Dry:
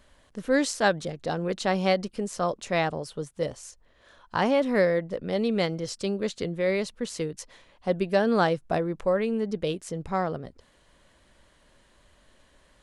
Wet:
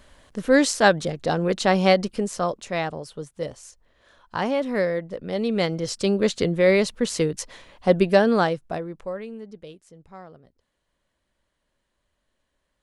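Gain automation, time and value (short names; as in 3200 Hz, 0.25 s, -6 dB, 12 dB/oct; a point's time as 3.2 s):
2.15 s +6 dB
2.71 s -1 dB
5.19 s -1 dB
6.21 s +8 dB
8.06 s +8 dB
8.68 s -2.5 dB
9.87 s -15.5 dB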